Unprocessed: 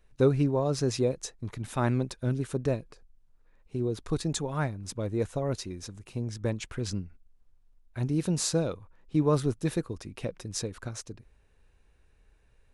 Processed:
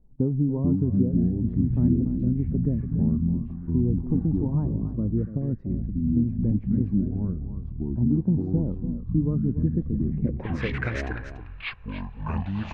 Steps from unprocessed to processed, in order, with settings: compression 3:1, threshold -29 dBFS, peak gain reduction 9 dB; ever faster or slower copies 341 ms, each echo -7 st, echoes 3; low-pass sweep 230 Hz -> 2.5 kHz, 10.23–10.74 s; delay 288 ms -11.5 dB; sweeping bell 0.24 Hz 850–2200 Hz +14 dB; trim +5 dB

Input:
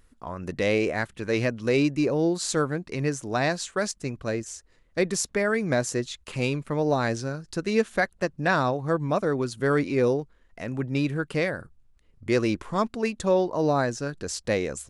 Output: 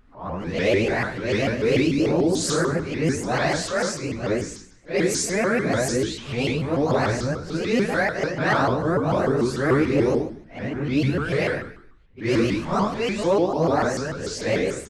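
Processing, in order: phase randomisation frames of 200 ms; level-controlled noise filter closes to 3 kHz, open at -20.5 dBFS; in parallel at 0 dB: peak limiter -19 dBFS, peak gain reduction 8.5 dB; on the sum: hard clipper -10.5 dBFS, distortion -34 dB; on a send: frequency-shifting echo 100 ms, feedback 40%, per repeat -57 Hz, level -13 dB; on the sum: vibrato with a chosen wave saw up 6.8 Hz, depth 250 cents; trim -1.5 dB

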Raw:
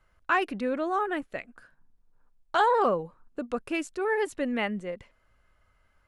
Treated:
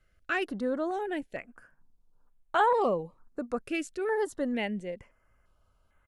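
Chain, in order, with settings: resampled via 32 kHz; step-sequenced notch 2.2 Hz 960–4900 Hz; trim -1 dB

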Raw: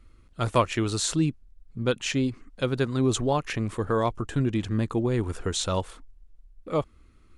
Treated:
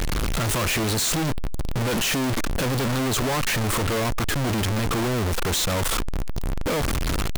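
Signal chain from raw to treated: one-bit comparator; trim +4.5 dB

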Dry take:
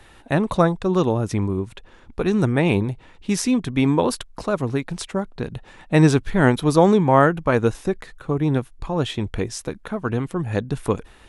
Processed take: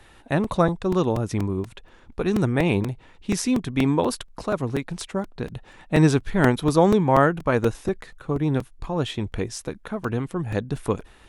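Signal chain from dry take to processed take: crackling interface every 0.24 s, samples 128, repeat, from 0.44 s; trim -2.5 dB

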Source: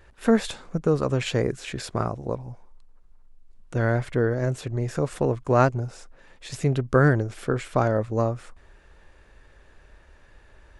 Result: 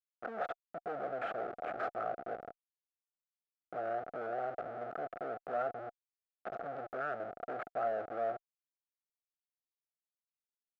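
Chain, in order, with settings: Schmitt trigger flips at -33.5 dBFS; overdrive pedal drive 28 dB, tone 1 kHz, clips at -20 dBFS; two resonant band-passes 970 Hz, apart 0.9 oct; trim +1 dB

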